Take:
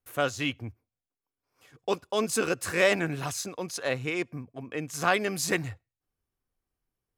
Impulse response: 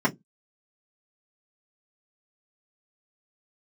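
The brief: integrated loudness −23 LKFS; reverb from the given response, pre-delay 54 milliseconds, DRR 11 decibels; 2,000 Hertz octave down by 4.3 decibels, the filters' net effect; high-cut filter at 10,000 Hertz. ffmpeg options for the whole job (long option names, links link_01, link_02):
-filter_complex "[0:a]lowpass=10000,equalizer=frequency=2000:width_type=o:gain=-5.5,asplit=2[link_01][link_02];[1:a]atrim=start_sample=2205,adelay=54[link_03];[link_02][link_03]afir=irnorm=-1:irlink=0,volume=-25dB[link_04];[link_01][link_04]amix=inputs=2:normalize=0,volume=7dB"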